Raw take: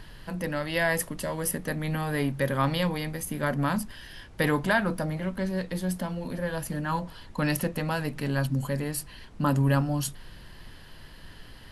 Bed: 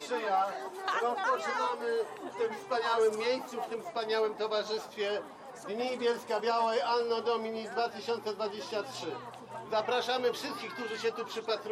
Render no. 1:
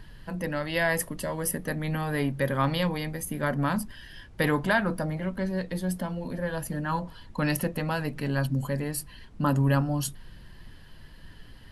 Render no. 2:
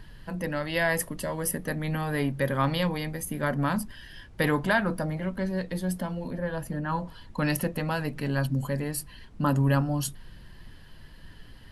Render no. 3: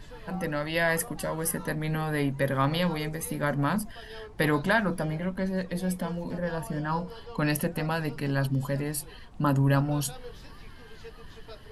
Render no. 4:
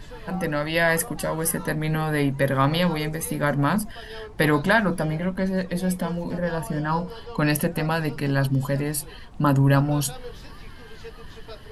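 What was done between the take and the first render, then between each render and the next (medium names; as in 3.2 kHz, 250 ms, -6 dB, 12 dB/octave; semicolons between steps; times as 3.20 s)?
noise reduction 6 dB, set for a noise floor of -47 dBFS
6.30–7.00 s: treble shelf 3.1 kHz -8 dB
add bed -14.5 dB
trim +5 dB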